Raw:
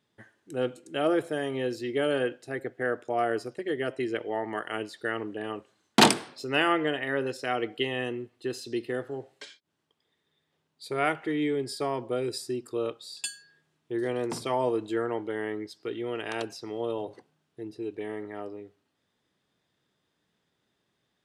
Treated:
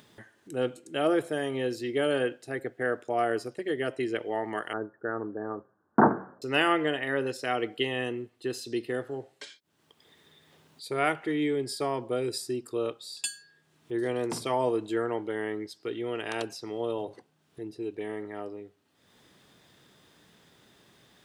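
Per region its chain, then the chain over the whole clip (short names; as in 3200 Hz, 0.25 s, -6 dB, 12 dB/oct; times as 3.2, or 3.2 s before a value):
4.73–6.42 steep low-pass 1600 Hz 72 dB/oct + de-hum 63.17 Hz, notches 3
whole clip: high shelf 8400 Hz +4.5 dB; upward compressor, threshold -45 dBFS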